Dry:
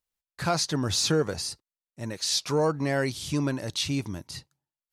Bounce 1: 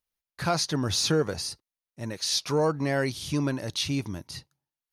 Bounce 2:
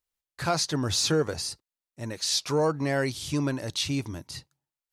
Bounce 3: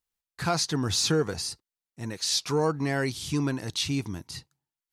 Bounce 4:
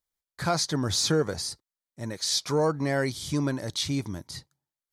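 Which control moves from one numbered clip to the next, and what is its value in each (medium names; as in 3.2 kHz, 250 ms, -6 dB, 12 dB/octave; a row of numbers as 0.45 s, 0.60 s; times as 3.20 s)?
band-stop, frequency: 7.6 kHz, 190 Hz, 580 Hz, 2.7 kHz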